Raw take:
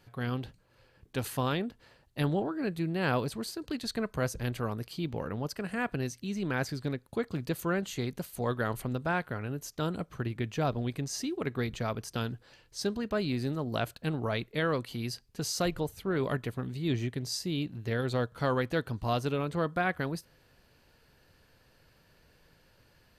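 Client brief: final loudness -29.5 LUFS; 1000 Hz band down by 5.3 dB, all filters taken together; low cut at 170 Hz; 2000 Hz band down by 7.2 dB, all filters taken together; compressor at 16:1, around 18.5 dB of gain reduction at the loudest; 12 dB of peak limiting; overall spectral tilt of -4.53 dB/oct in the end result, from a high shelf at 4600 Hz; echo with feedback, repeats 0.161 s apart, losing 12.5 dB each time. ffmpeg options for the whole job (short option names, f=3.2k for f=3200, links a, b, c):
-af "highpass=170,equalizer=f=1k:t=o:g=-5.5,equalizer=f=2k:t=o:g=-8.5,highshelf=f=4.6k:g=4.5,acompressor=threshold=-46dB:ratio=16,alimiter=level_in=21dB:limit=-24dB:level=0:latency=1,volume=-21dB,aecho=1:1:161|322|483:0.237|0.0569|0.0137,volume=25.5dB"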